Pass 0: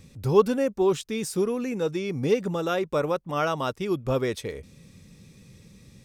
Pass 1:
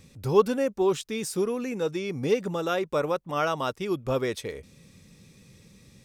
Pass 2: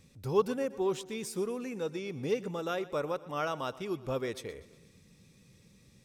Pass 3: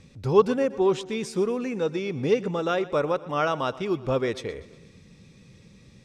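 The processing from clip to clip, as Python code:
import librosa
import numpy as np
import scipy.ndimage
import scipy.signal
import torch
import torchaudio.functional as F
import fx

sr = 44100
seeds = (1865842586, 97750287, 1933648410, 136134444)

y1 = fx.low_shelf(x, sr, hz=270.0, db=-4.5)
y2 = fx.echo_feedback(y1, sr, ms=121, feedback_pct=58, wet_db=-18.5)
y2 = F.gain(torch.from_numpy(y2), -7.0).numpy()
y3 = fx.air_absorb(y2, sr, metres=78.0)
y3 = F.gain(torch.from_numpy(y3), 9.0).numpy()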